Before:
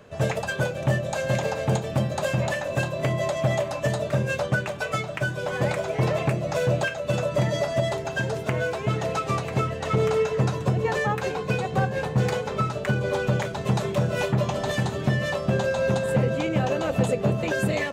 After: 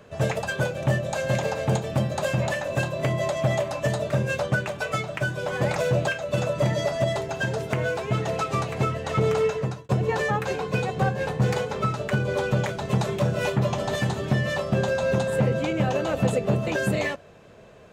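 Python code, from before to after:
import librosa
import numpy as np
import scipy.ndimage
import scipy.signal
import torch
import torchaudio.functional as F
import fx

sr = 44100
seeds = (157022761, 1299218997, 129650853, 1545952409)

y = fx.edit(x, sr, fx.cut(start_s=5.76, length_s=0.76),
    fx.fade_out_span(start_s=10.24, length_s=0.41), tone=tone)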